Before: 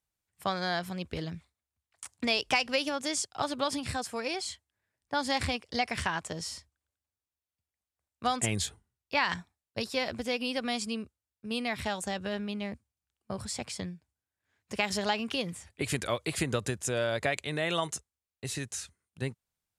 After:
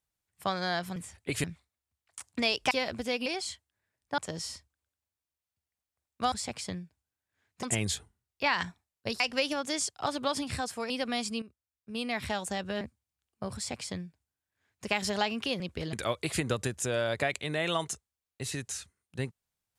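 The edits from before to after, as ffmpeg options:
-filter_complex "[0:a]asplit=14[a][b][c][d][e][f][g][h][i][j][k][l][m][n];[a]atrim=end=0.962[o];[b]atrim=start=15.478:end=15.962[p];[c]atrim=start=1.288:end=2.562[q];[d]atrim=start=9.908:end=10.462[r];[e]atrim=start=4.258:end=5.182[s];[f]atrim=start=6.198:end=8.342[t];[g]atrim=start=13.428:end=14.742[u];[h]atrim=start=8.338:end=9.912[v];[i]atrim=start=2.558:end=4.262[w];[j]atrim=start=10.458:end=10.98,asetpts=PTS-STARTPTS,afade=t=out:st=0.518:d=0.004:c=hsin:silence=0.223872[x];[k]atrim=start=10.98:end=12.372,asetpts=PTS-STARTPTS,afade=t=in:d=0.74:silence=0.223872[y];[l]atrim=start=12.688:end=15.482[z];[m]atrim=start=0.958:end=1.292[aa];[n]atrim=start=15.958[ab];[o][p]acrossfade=d=0.004:c1=hsin:c2=hsin[ac];[ac][q]acrossfade=d=0.004:c1=hsin:c2=hsin[ad];[ad][r]acrossfade=d=0.004:c1=hsin:c2=hsin[ae];[ae][s]acrossfade=d=0.004:c1=hsin:c2=hsin[af];[af][t]acrossfade=d=0.004:c1=hsin:c2=hsin[ag];[ag][u]acrossfade=d=0.004:c1=hsin:c2=hsin[ah];[ah][v]acrossfade=d=0.004:c1=hsin:c2=hsin[ai];[ai][w]acrossfade=d=0.004:c1=hsin:c2=hsin[aj];[x][y]concat=n=2:v=0:a=1[ak];[aj][ak]acrossfade=d=0.004:c1=hsin:c2=hsin[al];[al][z]acrossfade=d=0.004:c1=hsin:c2=hsin[am];[am][aa]acrossfade=d=0.004:c1=hsin:c2=hsin[an];[an][ab]acrossfade=d=0.004:c1=hsin:c2=hsin"

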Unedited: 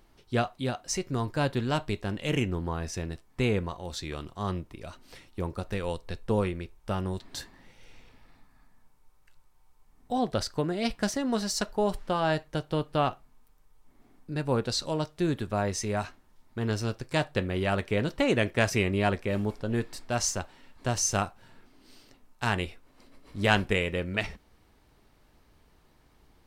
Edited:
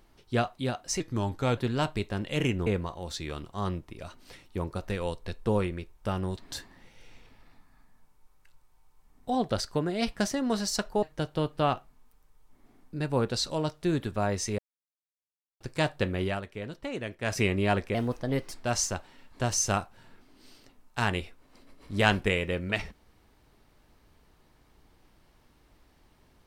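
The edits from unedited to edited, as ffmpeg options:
-filter_complex "[0:a]asplit=11[a][b][c][d][e][f][g][h][i][j][k];[a]atrim=end=1.004[l];[b]atrim=start=1:end=1.5,asetpts=PTS-STARTPTS,asetrate=38367,aresample=44100[m];[c]atrim=start=1.496:end=2.592[n];[d]atrim=start=3.488:end=11.852[o];[e]atrim=start=12.378:end=15.94,asetpts=PTS-STARTPTS,afade=t=out:st=3.558:d=0.004:c=hsin[p];[f]atrim=start=15.94:end=16.96,asetpts=PTS-STARTPTS,volume=0[q];[g]atrim=start=16.96:end=17.77,asetpts=PTS-STARTPTS,afade=t=in:d=0.004:c=hsin,afade=t=out:st=0.63:d=0.18:silence=0.298538[r];[h]atrim=start=17.77:end=18.57,asetpts=PTS-STARTPTS,volume=-10.5dB[s];[i]atrim=start=18.57:end=19.304,asetpts=PTS-STARTPTS,afade=t=in:d=0.18:silence=0.298538[t];[j]atrim=start=19.3:end=19.97,asetpts=PTS-STARTPTS,asetrate=51156,aresample=44100[u];[k]atrim=start=19.966[v];[l][m]acrossfade=d=0.004:c1=hsin:c2=hsin[w];[w][n]acrossfade=d=0.004:c1=hsin:c2=hsin[x];[x][o]acrossfade=d=0.004:c1=hsin:c2=hsin[y];[p][q][r][s][t]concat=n=5:v=0:a=1[z];[y][z]acrossfade=d=0.004:c1=hsin:c2=hsin[aa];[aa][u]acrossfade=d=0.004:c1=hsin:c2=hsin[ab];[ab][v]acrossfade=d=0.004:c1=hsin:c2=hsin"

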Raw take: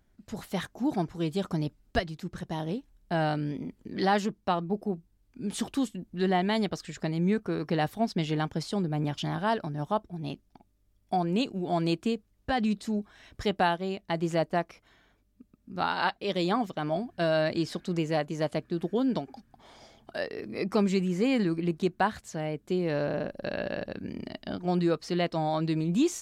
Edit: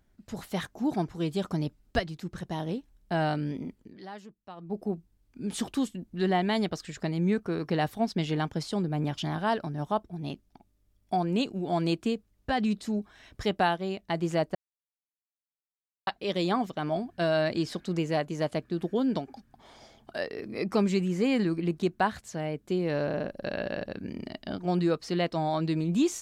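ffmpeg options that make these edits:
-filter_complex "[0:a]asplit=5[a][b][c][d][e];[a]atrim=end=3.98,asetpts=PTS-STARTPTS,afade=t=out:st=3.69:d=0.29:silence=0.125893[f];[b]atrim=start=3.98:end=4.56,asetpts=PTS-STARTPTS,volume=-18dB[g];[c]atrim=start=4.56:end=14.55,asetpts=PTS-STARTPTS,afade=t=in:d=0.29:silence=0.125893,afade=t=out:st=9.986:d=0.004:c=hsin[h];[d]atrim=start=14.55:end=16.07,asetpts=PTS-STARTPTS,volume=0[i];[e]atrim=start=16.07,asetpts=PTS-STARTPTS,afade=t=in:d=0.004:c=hsin[j];[f][g][h][i][j]concat=n=5:v=0:a=1"

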